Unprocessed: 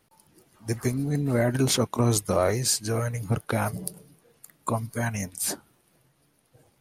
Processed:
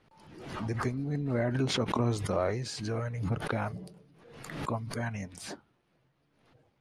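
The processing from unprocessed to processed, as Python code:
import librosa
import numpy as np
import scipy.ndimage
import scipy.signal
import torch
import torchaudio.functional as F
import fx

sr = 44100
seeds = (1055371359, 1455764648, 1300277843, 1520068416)

y = scipy.signal.sosfilt(scipy.signal.butter(2, 3600.0, 'lowpass', fs=sr, output='sos'), x)
y = fx.pre_swell(y, sr, db_per_s=53.0)
y = y * 10.0 ** (-6.5 / 20.0)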